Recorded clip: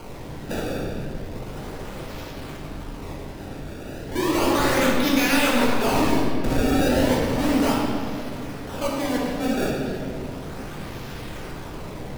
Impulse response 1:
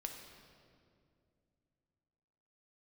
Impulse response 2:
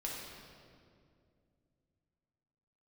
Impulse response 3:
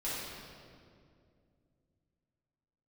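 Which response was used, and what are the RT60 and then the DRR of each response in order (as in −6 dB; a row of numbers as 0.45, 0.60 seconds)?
2; 2.4, 2.3, 2.3 seconds; 3.0, −4.0, −10.0 decibels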